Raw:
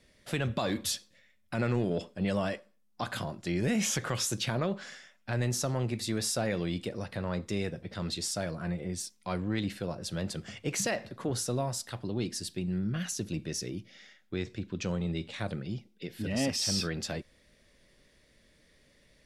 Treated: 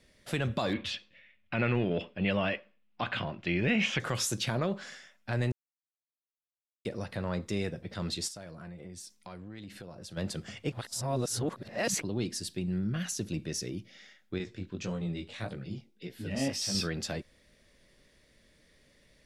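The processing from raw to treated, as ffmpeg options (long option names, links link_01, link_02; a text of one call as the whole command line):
ffmpeg -i in.wav -filter_complex "[0:a]asettb=1/sr,asplit=3[link_01][link_02][link_03];[link_01]atrim=end=0.734[link_04];[link_02]atrim=start=0.73:end=4,asetpts=PTS-STARTPTS,afade=type=in:duration=0.004:curve=qsin,afade=type=out:start_time=3.266:duration=0.004:curve=qsin,lowpass=frequency=2700:width_type=q:width=3.2[link_05];[link_03]atrim=start=3.996[link_06];[link_04][link_05]acrossfade=duration=0.004:curve1=hsin:curve2=qsin[link_07];[link_07][link_06]acrossfade=duration=0.004:curve1=qsin:curve2=hsin,asplit=3[link_08][link_09][link_10];[link_08]afade=type=out:start_time=8.27:duration=0.02[link_11];[link_09]acompressor=threshold=-43dB:ratio=4:attack=3.2:release=140:knee=1:detection=peak,afade=type=in:start_time=8.27:duration=0.02,afade=type=out:start_time=10.16:duration=0.02[link_12];[link_10]afade=type=in:start_time=10.16:duration=0.02[link_13];[link_11][link_12][link_13]amix=inputs=3:normalize=0,asettb=1/sr,asplit=3[link_14][link_15][link_16];[link_14]atrim=end=14.384[link_17];[link_15]atrim=start=14.38:end=16.75,asetpts=PTS-STARTPTS,afade=type=in:duration=0.004:curve=qsin,afade=type=out:start_time=2.366:duration=0.004:curve=qsin,flanger=delay=15.5:depth=6.7:speed=1.7[link_18];[link_16]atrim=start=16.746[link_19];[link_17][link_18]acrossfade=duration=0.004:curve1=hsin:curve2=qsin[link_20];[link_20][link_19]acrossfade=duration=0.004:curve1=qsin:curve2=hsin,asplit=5[link_21][link_22][link_23][link_24][link_25];[link_21]atrim=end=5.52,asetpts=PTS-STARTPTS,afade=type=out:start_time=5.516:duration=0.004:curve=hsin[link_26];[link_22]atrim=start=5.52:end=6.85,asetpts=PTS-STARTPTS,volume=0[link_27];[link_23]atrim=start=6.85:end=10.722,asetpts=PTS-STARTPTS,afade=type=in:duration=0.004:curve=hsin[link_28];[link_24]atrim=start=10.718:end=12.022,asetpts=PTS-STARTPTS,areverse[link_29];[link_25]atrim=start=12.018[link_30];[link_26][link_27][link_28]concat=n=3:v=0:a=1[link_31];[link_31][link_29]acrossfade=duration=0.004:curve1=hsin:curve2=hsin[link_32];[link_32][link_30]acrossfade=duration=0.004:curve1=hsin:curve2=hsin" out.wav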